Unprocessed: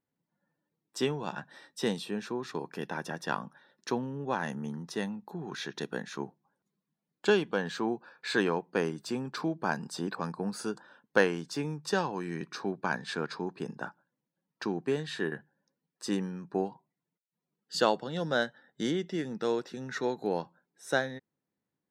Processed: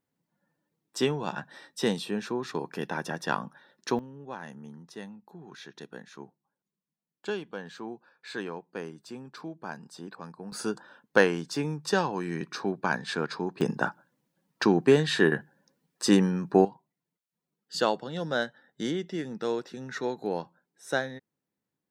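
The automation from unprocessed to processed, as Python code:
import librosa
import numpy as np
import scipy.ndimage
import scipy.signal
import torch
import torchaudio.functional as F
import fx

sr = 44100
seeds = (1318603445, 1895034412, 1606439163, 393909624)

y = fx.gain(x, sr, db=fx.steps((0.0, 3.5), (3.99, -8.0), (10.52, 3.5), (13.61, 10.5), (16.65, 0.0)))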